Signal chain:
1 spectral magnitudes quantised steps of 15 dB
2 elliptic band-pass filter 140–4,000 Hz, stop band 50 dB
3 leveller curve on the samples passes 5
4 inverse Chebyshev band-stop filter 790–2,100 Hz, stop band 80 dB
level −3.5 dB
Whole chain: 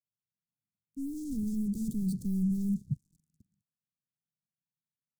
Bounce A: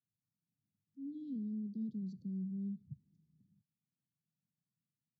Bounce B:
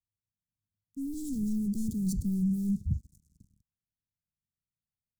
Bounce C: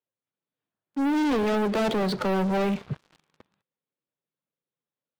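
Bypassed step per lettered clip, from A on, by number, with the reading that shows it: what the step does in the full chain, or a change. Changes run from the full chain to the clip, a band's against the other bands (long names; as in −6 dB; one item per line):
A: 3, change in momentary loudness spread +4 LU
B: 2, 8 kHz band +4.0 dB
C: 4, 500 Hz band +25.0 dB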